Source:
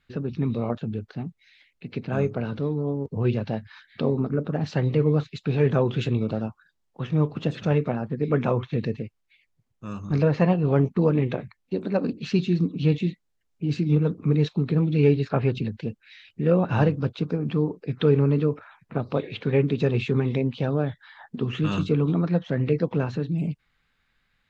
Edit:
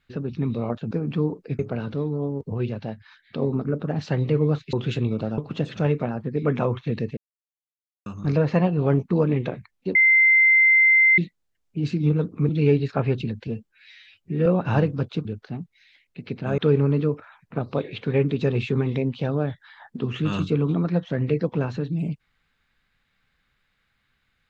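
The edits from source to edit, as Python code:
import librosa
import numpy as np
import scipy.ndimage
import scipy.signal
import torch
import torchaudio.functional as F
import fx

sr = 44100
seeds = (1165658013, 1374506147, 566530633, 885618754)

y = fx.edit(x, sr, fx.swap(start_s=0.91, length_s=1.33, other_s=17.29, other_length_s=0.68),
    fx.clip_gain(start_s=3.19, length_s=0.88, db=-3.5),
    fx.cut(start_s=5.38, length_s=0.45),
    fx.cut(start_s=6.48, length_s=0.76),
    fx.silence(start_s=9.03, length_s=0.89),
    fx.bleep(start_s=11.81, length_s=1.23, hz=2080.0, db=-12.5),
    fx.cut(start_s=14.35, length_s=0.51),
    fx.stretch_span(start_s=15.84, length_s=0.66, factor=1.5), tone=tone)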